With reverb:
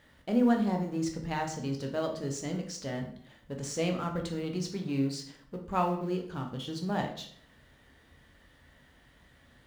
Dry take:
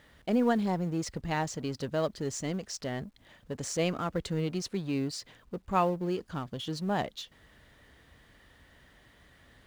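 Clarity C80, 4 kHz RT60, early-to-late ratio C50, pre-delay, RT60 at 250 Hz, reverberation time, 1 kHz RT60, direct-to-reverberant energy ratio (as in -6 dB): 12.0 dB, 0.45 s, 7.5 dB, 11 ms, 0.70 s, 0.60 s, 0.60 s, 2.5 dB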